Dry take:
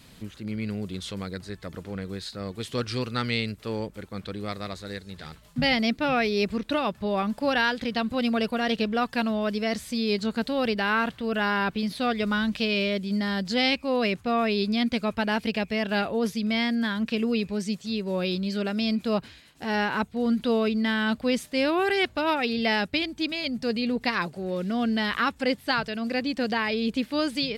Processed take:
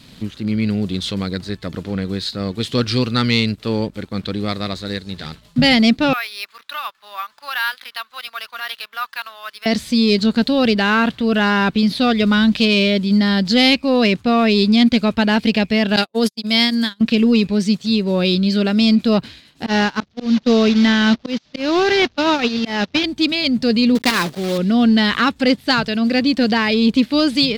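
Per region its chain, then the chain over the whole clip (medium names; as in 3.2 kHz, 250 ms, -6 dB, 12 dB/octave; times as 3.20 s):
6.13–9.66 s: ladder high-pass 1 kHz, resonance 45% + careless resampling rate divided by 3×, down none, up hold
15.96–17.01 s: gate -26 dBFS, range -50 dB + tone controls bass -5 dB, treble +14 dB + band-stop 5.9 kHz, Q 8.9
19.66–23.04 s: one-bit delta coder 32 kbps, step -28.5 dBFS + gate -27 dBFS, range -26 dB + slow attack 211 ms
23.95–24.59 s: block-companded coder 3-bit + bass shelf 79 Hz -11 dB
whole clip: treble shelf 6.6 kHz -4.5 dB; waveshaping leveller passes 1; ten-band graphic EQ 125 Hz +3 dB, 250 Hz +5 dB, 4 kHz +7 dB; trim +4 dB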